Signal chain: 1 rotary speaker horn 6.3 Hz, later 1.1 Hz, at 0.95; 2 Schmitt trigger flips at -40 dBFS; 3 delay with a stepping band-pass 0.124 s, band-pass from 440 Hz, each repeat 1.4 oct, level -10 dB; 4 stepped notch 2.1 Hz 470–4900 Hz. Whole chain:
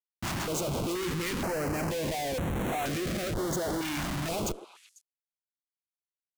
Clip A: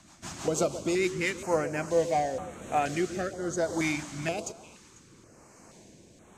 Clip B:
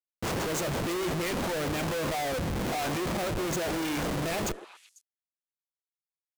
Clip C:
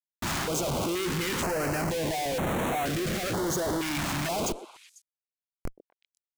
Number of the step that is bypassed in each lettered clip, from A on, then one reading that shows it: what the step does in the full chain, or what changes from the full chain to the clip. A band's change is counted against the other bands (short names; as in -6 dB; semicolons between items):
2, crest factor change +7.5 dB; 4, crest factor change -3.0 dB; 1, 125 Hz band -2.5 dB